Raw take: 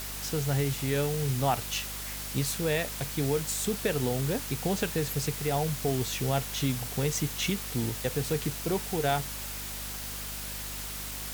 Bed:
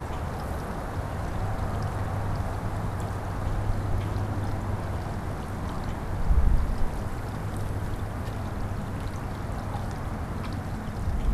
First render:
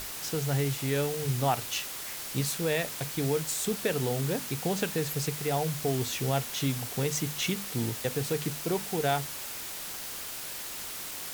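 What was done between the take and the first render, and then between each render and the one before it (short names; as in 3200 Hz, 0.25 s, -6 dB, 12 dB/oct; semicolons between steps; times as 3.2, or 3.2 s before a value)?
notches 50/100/150/200/250 Hz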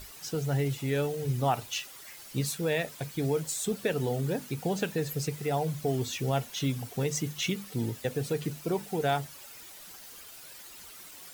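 denoiser 12 dB, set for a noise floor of -39 dBFS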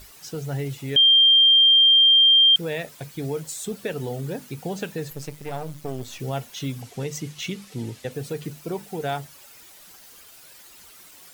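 0.96–2.56 bleep 3180 Hz -11.5 dBFS; 5.1–6.2 half-wave gain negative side -12 dB; 6.81–8.12 decimation joined by straight lines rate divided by 2×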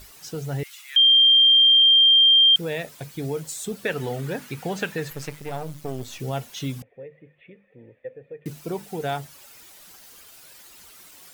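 0.63–1.82 steep high-pass 1100 Hz; 3.85–5.4 bell 1700 Hz +8.5 dB 1.9 oct; 6.82–8.46 vocal tract filter e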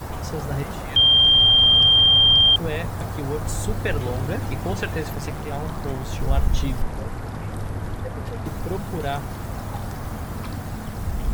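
add bed +1.5 dB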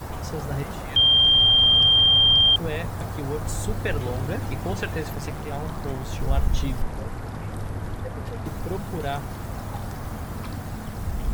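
gain -2 dB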